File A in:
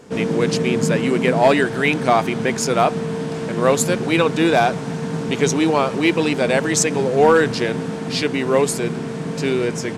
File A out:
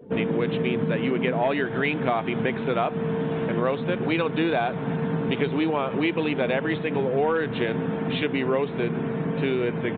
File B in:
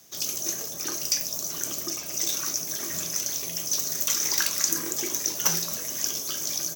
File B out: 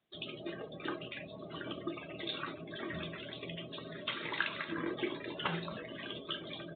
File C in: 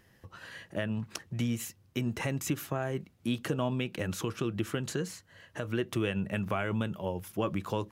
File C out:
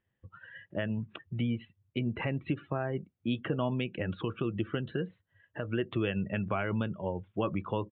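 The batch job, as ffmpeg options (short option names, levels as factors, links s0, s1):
-af "afftdn=nr=20:nf=-43,acompressor=threshold=0.0891:ratio=5,aresample=8000,aresample=44100"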